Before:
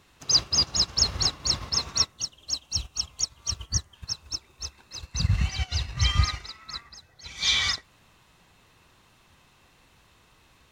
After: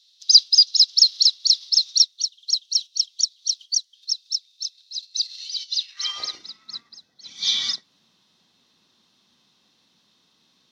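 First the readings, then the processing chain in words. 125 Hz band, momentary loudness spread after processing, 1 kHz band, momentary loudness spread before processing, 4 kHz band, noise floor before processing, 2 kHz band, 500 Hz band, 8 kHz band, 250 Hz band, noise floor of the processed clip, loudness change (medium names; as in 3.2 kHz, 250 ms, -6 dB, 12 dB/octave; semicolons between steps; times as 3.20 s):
under -35 dB, 18 LU, -11.0 dB, 16 LU, +8.0 dB, -60 dBFS, -10.5 dB, under -10 dB, +3.0 dB, under -15 dB, -65 dBFS, +7.0 dB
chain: octave divider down 1 oct, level 0 dB; high-pass sweep 4 kHz -> 210 Hz, 5.76–6.49 s; high-order bell 4.4 kHz +13.5 dB 1.1 oct; trim -10.5 dB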